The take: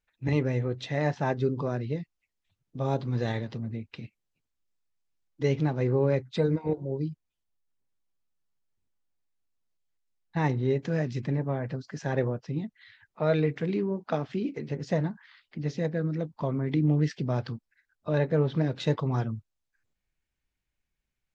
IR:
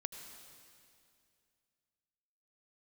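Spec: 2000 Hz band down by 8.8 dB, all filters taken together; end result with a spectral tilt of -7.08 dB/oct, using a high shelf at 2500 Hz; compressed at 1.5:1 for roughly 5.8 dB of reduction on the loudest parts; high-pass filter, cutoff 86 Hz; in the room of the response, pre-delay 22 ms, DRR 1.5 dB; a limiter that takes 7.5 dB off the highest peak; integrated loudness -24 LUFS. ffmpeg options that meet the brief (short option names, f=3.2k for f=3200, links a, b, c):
-filter_complex "[0:a]highpass=86,equalizer=f=2k:t=o:g=-7.5,highshelf=f=2.5k:g=-8,acompressor=threshold=-37dB:ratio=1.5,alimiter=level_in=2.5dB:limit=-24dB:level=0:latency=1,volume=-2.5dB,asplit=2[a][b];[1:a]atrim=start_sample=2205,adelay=22[c];[b][c]afir=irnorm=-1:irlink=0,volume=0.5dB[d];[a][d]amix=inputs=2:normalize=0,volume=11dB"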